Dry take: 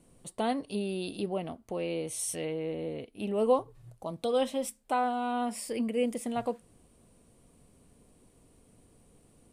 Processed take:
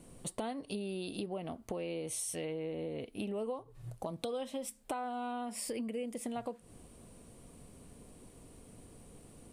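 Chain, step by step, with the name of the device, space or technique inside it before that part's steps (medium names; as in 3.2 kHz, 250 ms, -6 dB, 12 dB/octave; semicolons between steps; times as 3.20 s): serial compression, leveller first (compression 1.5:1, threshold -38 dBFS, peak gain reduction 7 dB; compression 6:1, threshold -42 dBFS, peak gain reduction 15.5 dB); trim +6 dB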